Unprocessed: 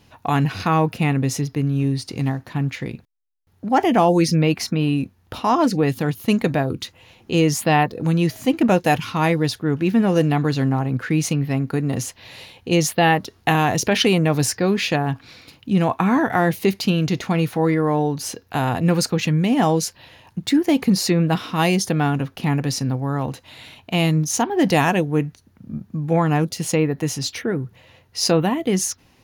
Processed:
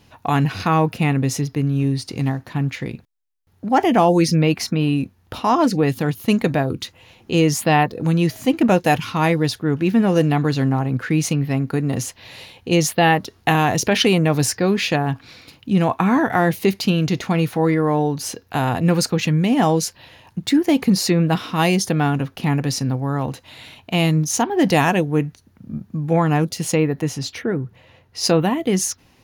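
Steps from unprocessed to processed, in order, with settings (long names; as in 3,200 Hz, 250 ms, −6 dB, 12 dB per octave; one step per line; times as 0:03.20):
0:27.01–0:28.24: high-shelf EQ 3,700 Hz −7 dB
level +1 dB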